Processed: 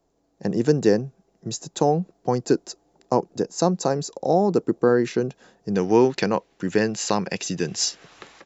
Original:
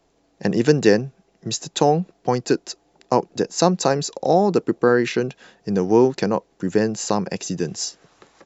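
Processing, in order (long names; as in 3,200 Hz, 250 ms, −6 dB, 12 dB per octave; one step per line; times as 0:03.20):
parametric band 2,600 Hz −9 dB 1.9 octaves, from 0:05.75 +7.5 dB
automatic gain control gain up to 11.5 dB
level −5 dB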